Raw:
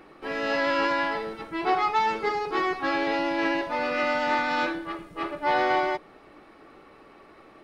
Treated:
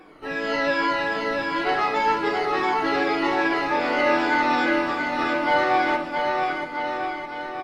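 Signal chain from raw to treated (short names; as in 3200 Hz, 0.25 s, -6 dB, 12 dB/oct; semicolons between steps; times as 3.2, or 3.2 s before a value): moving spectral ripple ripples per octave 1.8, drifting -2.6 Hz, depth 11 dB; bouncing-ball echo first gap 0.68 s, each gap 0.9×, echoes 5; on a send at -7 dB: reverb RT60 0.60 s, pre-delay 7 ms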